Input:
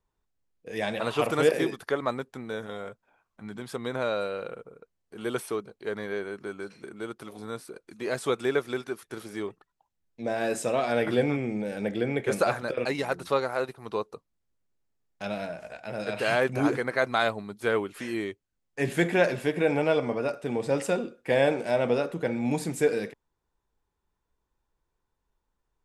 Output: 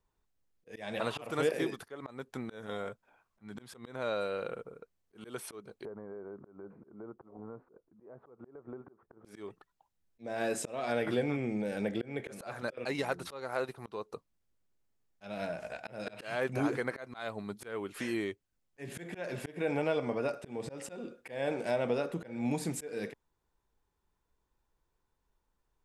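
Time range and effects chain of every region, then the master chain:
5.85–9.25 compressor 10:1, threshold -39 dBFS + LPF 1100 Hz 24 dB/oct
whole clip: compressor 2:1, threshold -32 dBFS; auto swell 0.233 s

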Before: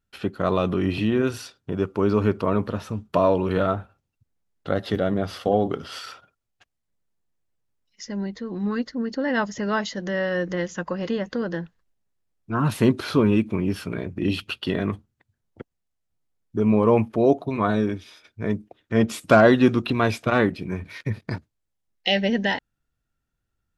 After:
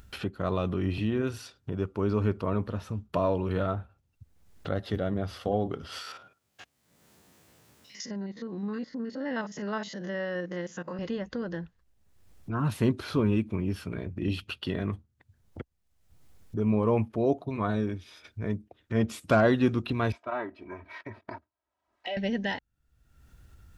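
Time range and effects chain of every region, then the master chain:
6.02–10.99 stepped spectrum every 50 ms + HPF 170 Hz
20.12–22.17 band-pass 910 Hz, Q 1.7 + comb 3.1 ms, depth 74%
whole clip: bell 64 Hz +10.5 dB 1.5 oct; upward compressor, threshold -23 dBFS; gain -8 dB

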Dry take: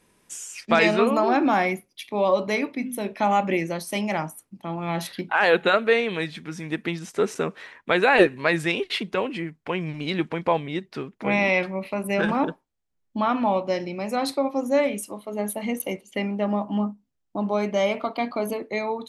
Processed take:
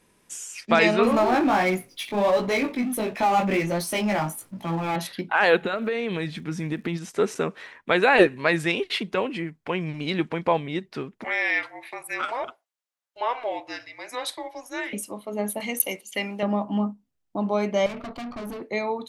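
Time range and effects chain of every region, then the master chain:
1.03–4.96 chorus 1.4 Hz, delay 16.5 ms, depth 3.8 ms + power-law curve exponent 0.7
5.61–6.96 low shelf 360 Hz +7 dB + compressor 10:1, threshold -22 dBFS + crackle 82/s -47 dBFS
11.24–14.93 HPF 890 Hz 24 dB/oct + frequency shift -240 Hz
15.6–16.43 tilt +3 dB/oct + mismatched tape noise reduction encoder only
17.86–18.62 bell 120 Hz +12.5 dB 2.4 oct + resonator 120 Hz, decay 0.22 s, mix 30% + tube stage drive 32 dB, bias 0.65
whole clip: dry

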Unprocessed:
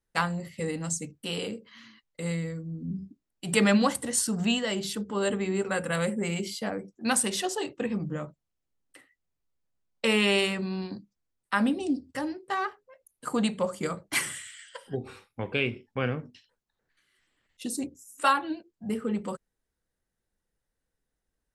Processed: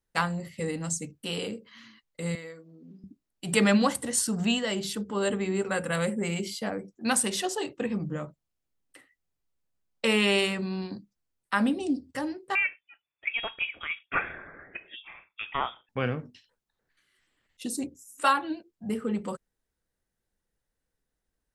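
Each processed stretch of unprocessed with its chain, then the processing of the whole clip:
2.35–3.04 HPF 480 Hz + bell 8400 Hz -8.5 dB 0.5 oct
12.55–15.89 resonant low shelf 670 Hz -11.5 dB, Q 3 + inverted band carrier 3500 Hz
whole clip: dry

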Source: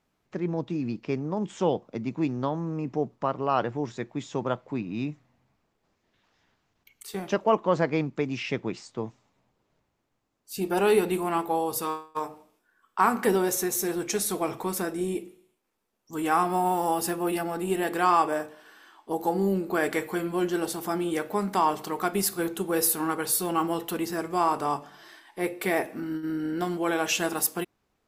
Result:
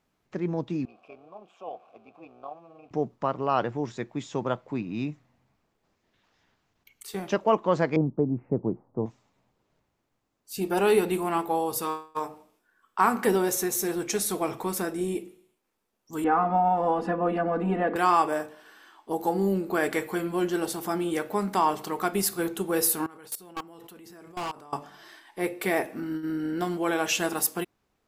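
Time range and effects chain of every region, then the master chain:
0.85–2.91 zero-crossing step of -39.5 dBFS + AM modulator 180 Hz, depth 50% + vowel filter a
7.96–9.06 inverse Chebyshev low-pass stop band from 3100 Hz, stop band 60 dB + low shelf 420 Hz +5.5 dB
16.24–17.96 LPF 1400 Hz + comb 4.1 ms, depth 84% + three-band squash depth 70%
23.06–24.73 level quantiser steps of 24 dB + overloaded stage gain 30 dB
whole clip: dry

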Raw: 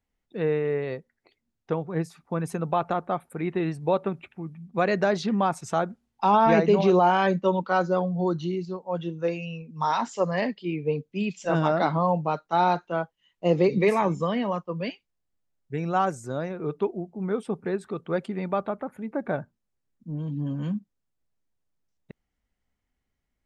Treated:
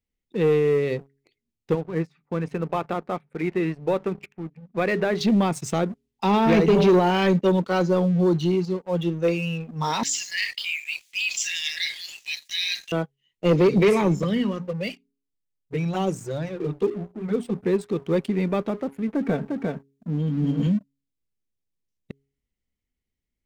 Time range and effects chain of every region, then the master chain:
1.75–5.21 LPF 1700 Hz + tilt shelf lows -6.5 dB, about 830 Hz + notches 50/100/150/200 Hz
10.03–12.92 brick-wall FIR high-pass 1600 Hz + bell 6900 Hz +8 dB 1.9 oct + fast leveller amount 50%
14.22–17.61 envelope flanger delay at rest 7.2 ms, full sweep at -20 dBFS + notches 60/120/180/240/300 Hz
19.08–20.67 HPF 40 Hz + comb 4.4 ms, depth 52% + echo 0.352 s -4 dB
whole clip: band shelf 1000 Hz -9.5 dB; de-hum 137.6 Hz, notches 3; sample leveller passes 2

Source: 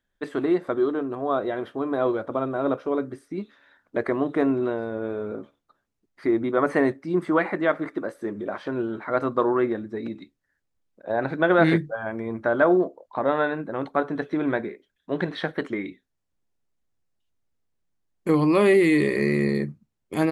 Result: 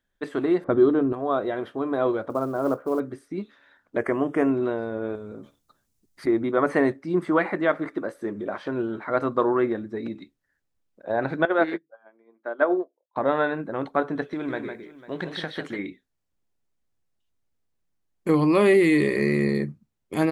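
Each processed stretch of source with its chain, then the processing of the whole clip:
0.64–1.13 low-pass opened by the level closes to 1100 Hz, open at -19 dBFS + low shelf 320 Hz +12 dB
2.3–3 LPF 1600 Hz 24 dB/oct + short-mantissa float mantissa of 4-bit
3.98–4.5 Butterworth band-stop 4000 Hz, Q 2.1 + high shelf 4100 Hz +8.5 dB
5.15–6.27 tone controls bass +8 dB, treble +14 dB + compressor 3:1, threshold -37 dBFS
11.45–13.16 HPF 270 Hz 24 dB/oct + air absorption 110 m + upward expander 2.5:1, over -34 dBFS
14.33–15.79 high shelf 2900 Hz +9.5 dB + compressor 1.5:1, threshold -36 dBFS + tapped delay 0.154/0.498 s -7/-18 dB
whole clip: dry

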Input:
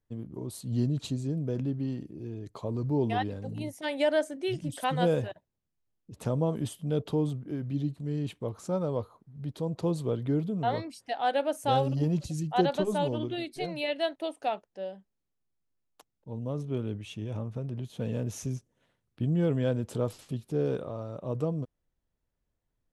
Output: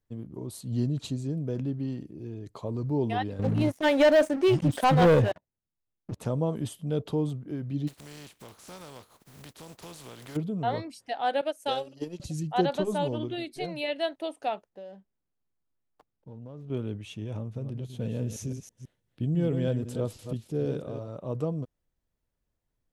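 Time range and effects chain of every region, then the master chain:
3.39–6.2 high shelf 3600 Hz -9.5 dB + sample leveller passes 3
7.87–10.35 spectral contrast lowered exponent 0.42 + compressor 2.5:1, threshold -49 dBFS
11.41–12.2 HPF 440 Hz + bell 920 Hz -9 dB 1.3 oct + transient shaper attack +7 dB, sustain -9 dB
14.69–16.7 median filter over 15 samples + high shelf 6500 Hz -6.5 dB + compressor 4:1, threshold -40 dBFS
17.38–21.08 reverse delay 0.164 s, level -8 dB + bell 1100 Hz -5.5 dB 1.6 oct
whole clip: dry

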